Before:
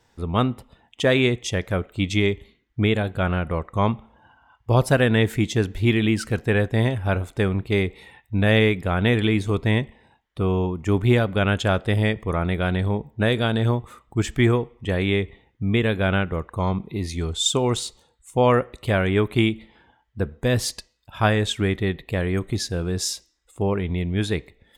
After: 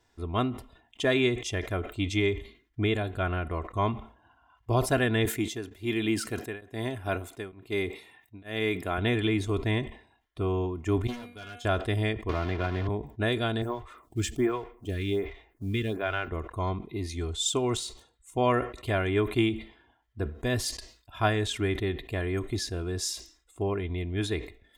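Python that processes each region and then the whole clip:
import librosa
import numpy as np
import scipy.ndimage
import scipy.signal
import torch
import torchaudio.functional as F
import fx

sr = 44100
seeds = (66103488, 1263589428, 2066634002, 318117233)

y = fx.chain(x, sr, fx.highpass(hz=130.0, slope=12),
    fx.high_shelf(hz=9600.0, db=9.5),
    fx.tremolo_abs(hz=1.1), at=(5.25, 8.98))
y = fx.chain(y, sr, fx.high_shelf(hz=4000.0, db=8.5),
    fx.comb_fb(f0_hz=240.0, decay_s=0.4, harmonics='all', damping=0.0, mix_pct=90),
    fx.overload_stage(gain_db=31.5), at=(11.07, 11.65))
y = fx.chain(y, sr, fx.block_float(bits=3),
    fx.air_absorb(metres=280.0),
    fx.band_squash(depth_pct=100), at=(12.29, 12.89))
y = fx.chain(y, sr, fx.law_mismatch(coded='mu'),
    fx.stagger_phaser(hz=1.3), at=(13.62, 16.28))
y = y + 0.56 * np.pad(y, (int(2.9 * sr / 1000.0), 0))[:len(y)]
y = fx.sustainer(y, sr, db_per_s=130.0)
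y = y * 10.0 ** (-7.0 / 20.0)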